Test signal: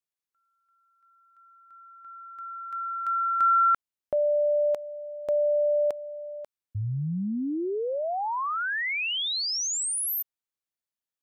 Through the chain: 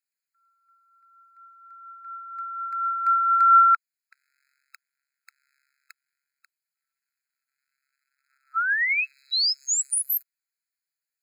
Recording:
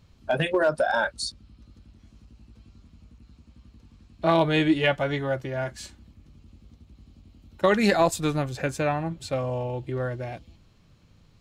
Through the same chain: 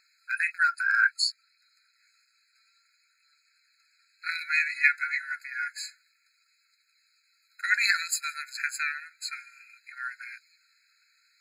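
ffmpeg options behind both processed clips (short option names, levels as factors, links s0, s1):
-af "aphaser=in_gain=1:out_gain=1:delay=2.6:decay=0.24:speed=0.6:type=triangular,afftfilt=real='re*eq(mod(floor(b*sr/1024/1300),2),1)':imag='im*eq(mod(floor(b*sr/1024/1300),2),1)':win_size=1024:overlap=0.75,volume=1.88"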